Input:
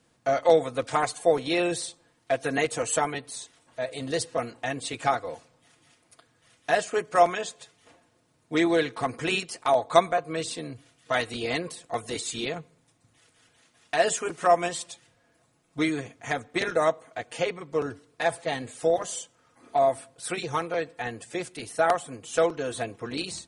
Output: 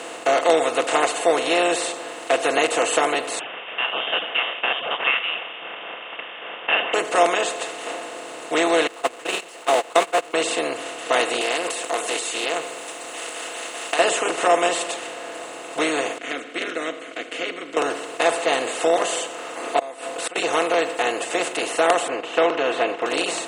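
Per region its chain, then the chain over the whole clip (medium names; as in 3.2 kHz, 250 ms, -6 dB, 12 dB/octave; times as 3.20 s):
3.39–6.94 s: frequency inversion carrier 3.4 kHz + peaking EQ 340 Hz -14 dB 0.86 oct
8.87–10.34 s: jump at every zero crossing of -31 dBFS + gate -23 dBFS, range -44 dB + bass shelf 440 Hz -6 dB
11.41–13.99 s: RIAA curve recording + compression 2.5:1, threshold -38 dBFS + loudspeaker Doppler distortion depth 0.16 ms
16.18–17.77 s: vowel filter i + peaking EQ 1.4 kHz +10.5 dB 0.41 oct
19.79–20.36 s: comb 4 ms, depth 52% + inverted gate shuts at -23 dBFS, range -40 dB
22.08–23.06 s: low-pass 3 kHz 24 dB/octave + gate -46 dBFS, range -8 dB
whole clip: spectral levelling over time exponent 0.4; high-pass 300 Hz 12 dB/octave; trim -1 dB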